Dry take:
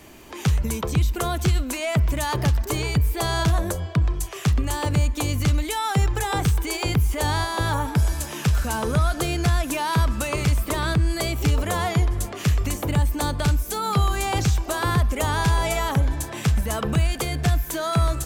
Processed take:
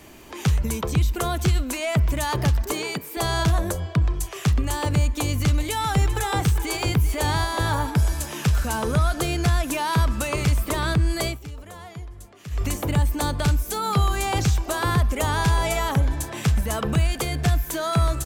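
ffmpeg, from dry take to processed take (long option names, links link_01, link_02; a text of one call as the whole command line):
ffmpeg -i in.wav -filter_complex "[0:a]asettb=1/sr,asplit=3[link_01][link_02][link_03];[link_01]atrim=end=2.724[link_04];[link_02]atrim=start=2.72:end=3.17,asetpts=PTS-STARTPTS,afade=type=in:duration=0.004:curve=qsin,afade=type=out:start_time=0.446:duration=0.004:curve=qsin,highpass=frequency=210:width=0.5412,highpass=frequency=210:width=1.3066[link_05];[link_03]atrim=start=3.166[link_06];[link_04][link_05]acrossfade=duration=0.004:curve1=hsin:curve2=qsin[link_07];[link_07][link_06]acrossfade=duration=0.004:curve1=qsin:curve2=hsin,asplit=3[link_08][link_09][link_10];[link_08]afade=type=out:start_time=5.59:duration=0.02[link_11];[link_09]aecho=1:1:391:0.237,afade=type=in:start_time=5.59:duration=0.02,afade=type=out:start_time=7.9:duration=0.02[link_12];[link_10]afade=type=in:start_time=7.9:duration=0.02[link_13];[link_11][link_12][link_13]amix=inputs=3:normalize=0,asplit=3[link_14][link_15][link_16];[link_14]atrim=end=11.39,asetpts=PTS-STARTPTS,afade=type=out:start_time=11.27:duration=0.12:silence=0.149624[link_17];[link_15]atrim=start=11.39:end=12.5,asetpts=PTS-STARTPTS,volume=-16.5dB[link_18];[link_16]atrim=start=12.5,asetpts=PTS-STARTPTS,afade=type=in:duration=0.12:silence=0.149624[link_19];[link_17][link_18][link_19]concat=n=3:v=0:a=1" out.wav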